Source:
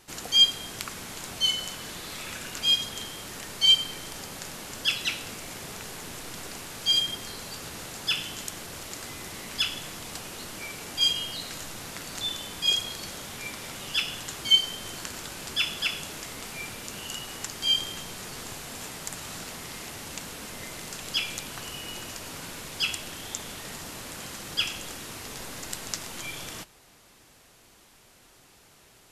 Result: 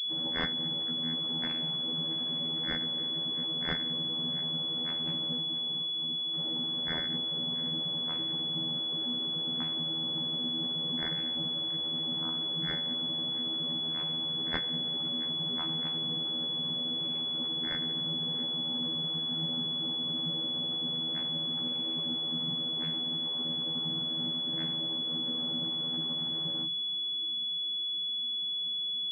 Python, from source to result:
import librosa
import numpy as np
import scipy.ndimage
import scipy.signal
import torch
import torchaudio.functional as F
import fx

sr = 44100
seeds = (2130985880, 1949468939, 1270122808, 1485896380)

y = fx.partial_stretch(x, sr, pct=117)
y = fx.low_shelf(y, sr, hz=350.0, db=8.5)
y = fx.tube_stage(y, sr, drive_db=42.0, bias=0.7, at=(5.4, 6.33))
y = fx.vocoder(y, sr, bands=32, carrier='saw', carrier_hz=80.8)
y = fx.doubler(y, sr, ms=16.0, db=-6.5)
y = y + 10.0 ** (-19.5 / 20.0) * np.pad(y, (int(678 * sr / 1000.0), 0))[:len(y)]
y = fx.pwm(y, sr, carrier_hz=3400.0)
y = y * librosa.db_to_amplitude(-3.5)